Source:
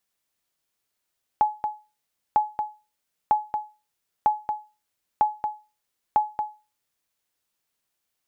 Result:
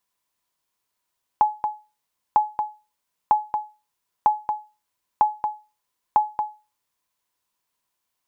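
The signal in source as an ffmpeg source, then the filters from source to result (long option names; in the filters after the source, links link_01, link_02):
-f lavfi -i "aevalsrc='0.266*(sin(2*PI*848*mod(t,0.95))*exp(-6.91*mod(t,0.95)/0.3)+0.422*sin(2*PI*848*max(mod(t,0.95)-0.23,0))*exp(-6.91*max(mod(t,0.95)-0.23,0)/0.3))':duration=5.7:sample_rate=44100"
-af "equalizer=frequency=1000:width=7:gain=13"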